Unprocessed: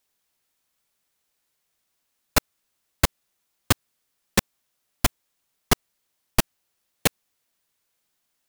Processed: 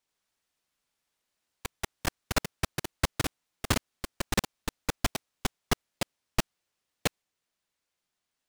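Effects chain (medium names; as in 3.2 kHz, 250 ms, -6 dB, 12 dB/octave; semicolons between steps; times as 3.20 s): median filter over 3 samples; ever faster or slower copies 81 ms, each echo +3 st, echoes 3; trim -6.5 dB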